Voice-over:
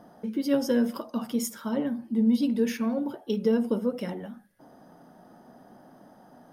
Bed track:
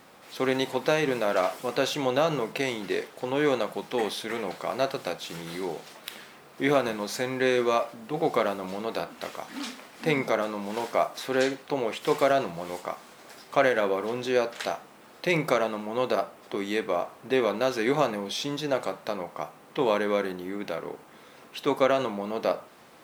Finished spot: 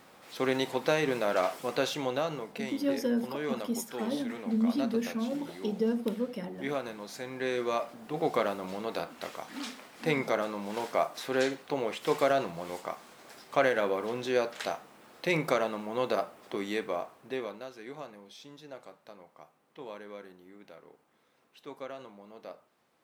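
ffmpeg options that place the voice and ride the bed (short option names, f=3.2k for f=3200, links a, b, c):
-filter_complex "[0:a]adelay=2350,volume=-5dB[a];[1:a]volume=4dB,afade=t=out:st=1.75:d=0.7:silence=0.421697,afade=t=in:st=7.21:d=1.07:silence=0.446684,afade=t=out:st=16.61:d=1.08:silence=0.16788[b];[a][b]amix=inputs=2:normalize=0"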